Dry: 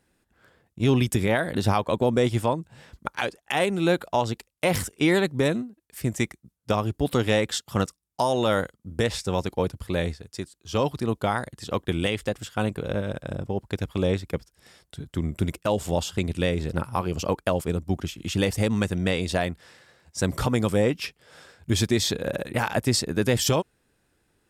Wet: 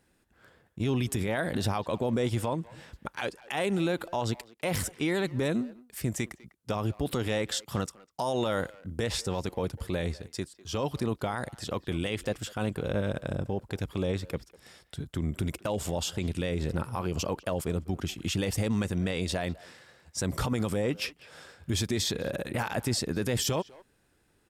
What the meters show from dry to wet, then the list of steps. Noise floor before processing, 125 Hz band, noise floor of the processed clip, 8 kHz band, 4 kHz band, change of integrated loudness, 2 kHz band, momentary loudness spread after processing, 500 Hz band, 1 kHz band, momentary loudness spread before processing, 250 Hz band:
−74 dBFS, −5.0 dB, −69 dBFS, −3.0 dB, −4.5 dB, −5.5 dB, −6.5 dB, 8 LU, −6.5 dB, −7.0 dB, 9 LU, −5.0 dB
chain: brickwall limiter −20 dBFS, peak gain reduction 8.5 dB
far-end echo of a speakerphone 200 ms, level −18 dB

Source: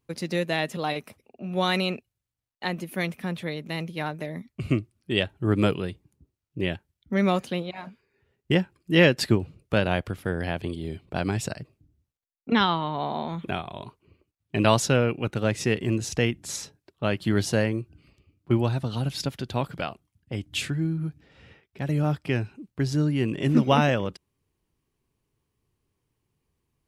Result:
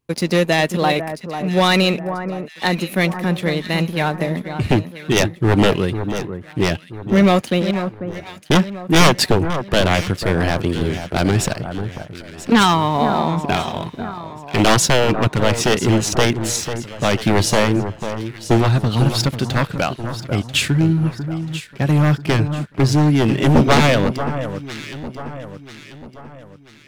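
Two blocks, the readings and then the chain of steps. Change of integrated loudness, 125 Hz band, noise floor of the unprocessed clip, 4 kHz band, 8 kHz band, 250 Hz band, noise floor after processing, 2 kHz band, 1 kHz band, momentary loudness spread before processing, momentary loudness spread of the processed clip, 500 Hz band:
+8.5 dB, +9.5 dB, −83 dBFS, +10.5 dB, +12.5 dB, +9.0 dB, −41 dBFS, +9.0 dB, +10.5 dB, 14 LU, 14 LU, +8.5 dB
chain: wavefolder on the positive side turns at −19.5 dBFS
leveller curve on the samples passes 2
delay that swaps between a low-pass and a high-pass 494 ms, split 1,600 Hz, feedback 63%, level −9 dB
level +4 dB

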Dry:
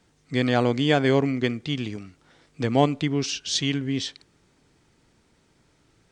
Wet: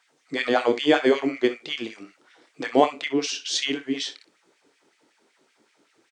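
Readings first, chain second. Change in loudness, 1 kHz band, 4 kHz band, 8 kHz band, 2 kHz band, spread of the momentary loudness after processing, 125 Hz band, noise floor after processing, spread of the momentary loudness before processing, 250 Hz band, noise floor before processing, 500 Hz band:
0.0 dB, +2.5 dB, +1.0 dB, 0.0 dB, +2.0 dB, 12 LU, −19.5 dB, −67 dBFS, 9 LU, −2.0 dB, −64 dBFS, +2.0 dB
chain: auto-filter high-pass sine 5.3 Hz 300–2,400 Hz
ambience of single reflections 27 ms −10 dB, 63 ms −15 dB
level −1 dB

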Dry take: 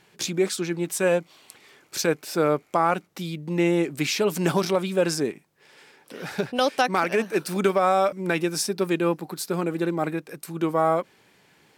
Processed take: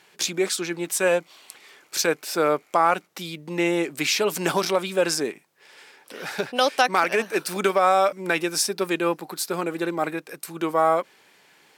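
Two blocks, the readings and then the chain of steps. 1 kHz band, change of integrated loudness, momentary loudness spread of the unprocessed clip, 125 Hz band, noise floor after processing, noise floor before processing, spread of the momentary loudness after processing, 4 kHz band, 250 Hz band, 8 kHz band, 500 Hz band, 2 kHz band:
+2.5 dB, +1.0 dB, 8 LU, −6.5 dB, −59 dBFS, −60 dBFS, 10 LU, +4.0 dB, −2.5 dB, +4.0 dB, 0.0 dB, +3.5 dB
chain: high-pass filter 560 Hz 6 dB per octave
level +4 dB

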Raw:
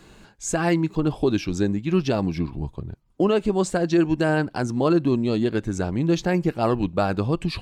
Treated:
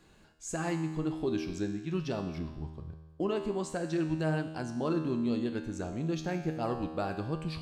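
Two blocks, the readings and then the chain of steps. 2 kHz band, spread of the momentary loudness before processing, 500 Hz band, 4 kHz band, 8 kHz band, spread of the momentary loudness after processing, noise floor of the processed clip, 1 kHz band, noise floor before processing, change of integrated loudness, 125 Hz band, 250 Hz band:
−11.5 dB, 7 LU, −11.5 dB, −11.0 dB, −10.5 dB, 8 LU, −59 dBFS, −10.5 dB, −52 dBFS, −10.5 dB, −10.0 dB, −10.5 dB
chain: tuned comb filter 79 Hz, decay 1.3 s, harmonics all, mix 80%

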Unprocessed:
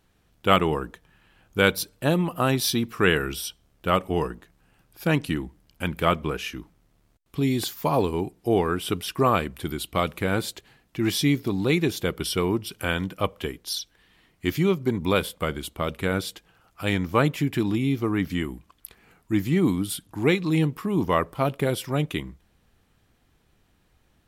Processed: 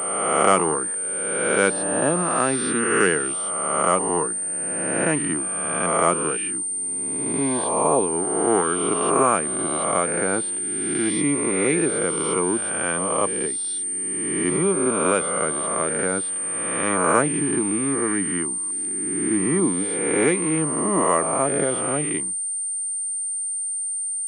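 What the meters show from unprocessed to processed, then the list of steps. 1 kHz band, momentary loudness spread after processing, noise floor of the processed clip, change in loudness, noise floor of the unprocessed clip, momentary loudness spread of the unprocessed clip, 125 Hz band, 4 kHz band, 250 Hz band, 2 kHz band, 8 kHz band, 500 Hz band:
+5.0 dB, 5 LU, −27 dBFS, +4.0 dB, −65 dBFS, 11 LU, −5.5 dB, −6.5 dB, +1.0 dB, +2.5 dB, +19.0 dB, +4.0 dB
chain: peak hold with a rise ahead of every peak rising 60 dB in 1.57 s
three-way crossover with the lows and the highs turned down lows −22 dB, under 170 Hz, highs −14 dB, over 2,300 Hz
switching amplifier with a slow clock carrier 8,900 Hz

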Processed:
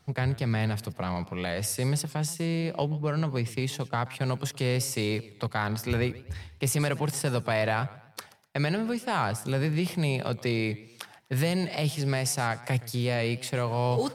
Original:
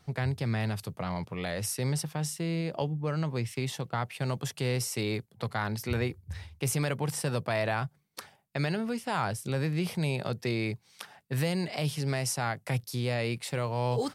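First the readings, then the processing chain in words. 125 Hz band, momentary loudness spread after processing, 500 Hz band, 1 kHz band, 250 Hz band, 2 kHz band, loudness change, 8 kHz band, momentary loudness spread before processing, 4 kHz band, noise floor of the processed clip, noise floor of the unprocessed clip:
+2.5 dB, 6 LU, +3.0 dB, +3.0 dB, +3.0 dB, +3.0 dB, +3.0 dB, +2.5 dB, 6 LU, +3.0 dB, −54 dBFS, −66 dBFS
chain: in parallel at −7.5 dB: dead-zone distortion −46 dBFS
on the sum: feedback echo with a swinging delay time 124 ms, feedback 38%, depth 177 cents, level −19 dB

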